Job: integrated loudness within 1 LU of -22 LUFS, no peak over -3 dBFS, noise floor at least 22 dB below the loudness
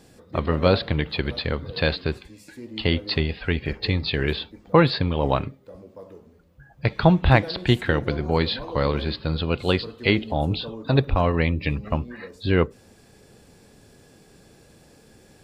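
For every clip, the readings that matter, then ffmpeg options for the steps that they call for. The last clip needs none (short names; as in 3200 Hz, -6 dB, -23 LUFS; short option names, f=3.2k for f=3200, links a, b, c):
loudness -23.5 LUFS; peak -3.5 dBFS; loudness target -22.0 LUFS
-> -af "volume=1.5dB,alimiter=limit=-3dB:level=0:latency=1"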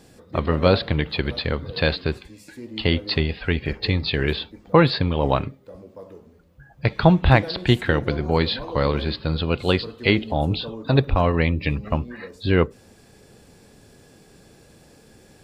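loudness -22.0 LUFS; peak -3.0 dBFS; noise floor -52 dBFS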